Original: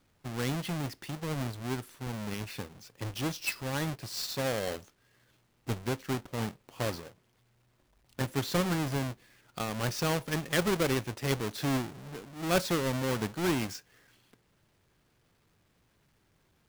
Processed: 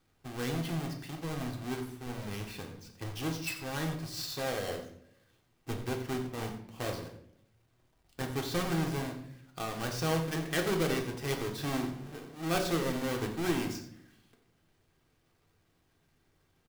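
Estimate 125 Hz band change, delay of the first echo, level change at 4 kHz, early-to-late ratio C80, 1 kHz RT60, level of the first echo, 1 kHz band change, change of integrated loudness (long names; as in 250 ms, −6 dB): −2.5 dB, 88 ms, −2.5 dB, 10.0 dB, 0.55 s, −13.0 dB, −1.5 dB, −2.0 dB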